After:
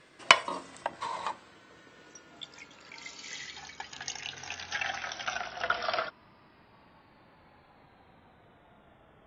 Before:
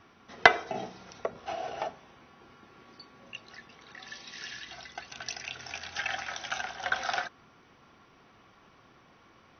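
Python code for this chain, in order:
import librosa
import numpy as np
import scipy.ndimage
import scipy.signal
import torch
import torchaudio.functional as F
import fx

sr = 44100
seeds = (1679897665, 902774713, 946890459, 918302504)

y = fx.speed_glide(x, sr, from_pct=150, to_pct=57)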